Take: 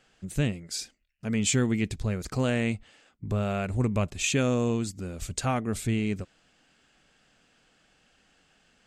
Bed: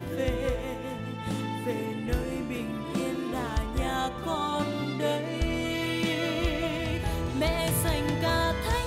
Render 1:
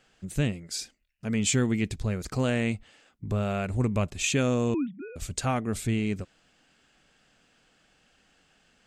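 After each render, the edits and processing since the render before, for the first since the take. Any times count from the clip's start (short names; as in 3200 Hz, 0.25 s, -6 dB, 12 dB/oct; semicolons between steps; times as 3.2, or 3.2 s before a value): 4.74–5.16 sine-wave speech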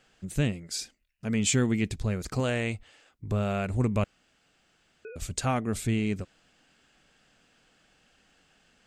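2.4–3.31 bell 200 Hz -8.5 dB; 4.04–5.05 room tone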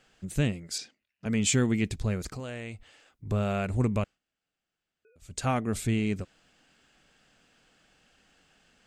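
0.78–1.26 BPF 150–4700 Hz; 2.29–3.26 compressor 2:1, threshold -42 dBFS; 3.94–5.48 dip -20.5 dB, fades 0.25 s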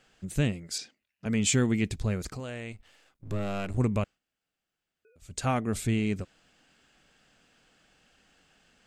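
2.72–3.78 half-wave gain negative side -12 dB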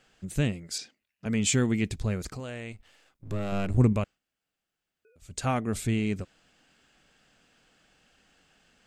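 3.52–3.93 low shelf 410 Hz +6.5 dB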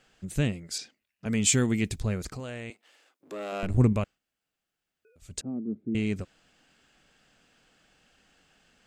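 1.28–2.01 high shelf 7000 Hz +8 dB; 2.7–3.63 HPF 290 Hz 24 dB/oct; 5.41–5.95 Butterworth band-pass 260 Hz, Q 1.5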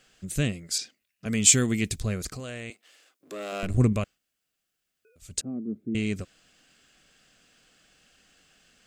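high shelf 3400 Hz +8 dB; notch 880 Hz, Q 5.7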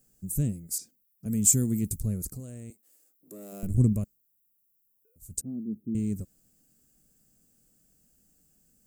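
EQ curve 210 Hz 0 dB, 1300 Hz -21 dB, 3200 Hz -26 dB, 14000 Hz +14 dB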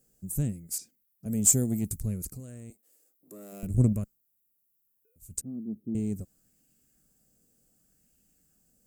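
added harmonics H 6 -38 dB, 7 -30 dB, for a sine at -7.5 dBFS; LFO bell 0.67 Hz 440–2700 Hz +6 dB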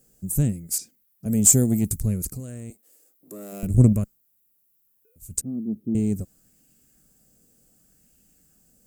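gain +7.5 dB; limiter -3 dBFS, peak gain reduction 2.5 dB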